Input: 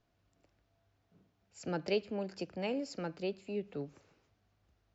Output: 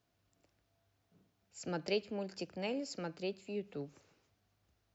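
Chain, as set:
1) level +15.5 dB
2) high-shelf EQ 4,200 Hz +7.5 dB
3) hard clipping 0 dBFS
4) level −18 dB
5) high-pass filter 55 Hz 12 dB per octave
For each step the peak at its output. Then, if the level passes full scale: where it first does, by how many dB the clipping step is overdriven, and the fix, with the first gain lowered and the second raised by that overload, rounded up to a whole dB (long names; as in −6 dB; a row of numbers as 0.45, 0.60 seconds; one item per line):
−6.0, −5.5, −5.5, −23.5, −24.0 dBFS
no step passes full scale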